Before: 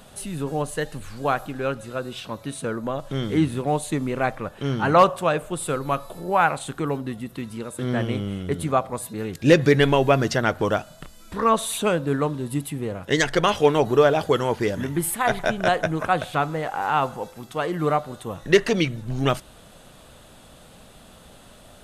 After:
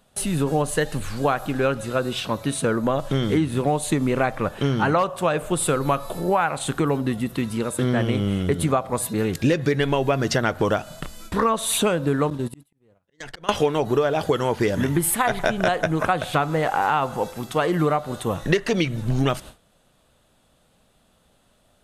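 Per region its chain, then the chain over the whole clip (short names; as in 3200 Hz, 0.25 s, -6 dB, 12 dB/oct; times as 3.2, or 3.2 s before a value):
12.3–13.49 gate -31 dBFS, range -17 dB + compressor 2:1, threshold -31 dBFS + auto swell 0.638 s
whole clip: gate with hold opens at -35 dBFS; compressor 12:1, threshold -24 dBFS; gain +7.5 dB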